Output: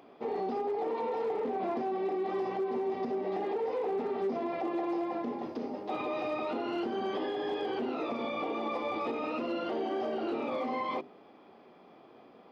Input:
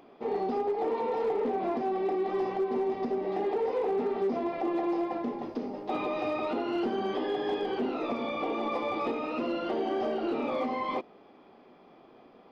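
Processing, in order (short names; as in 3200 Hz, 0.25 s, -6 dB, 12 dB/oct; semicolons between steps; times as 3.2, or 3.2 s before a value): HPF 61 Hz; notches 50/100/150/200/250/300/350/400 Hz; limiter -26 dBFS, peak gain reduction 5.5 dB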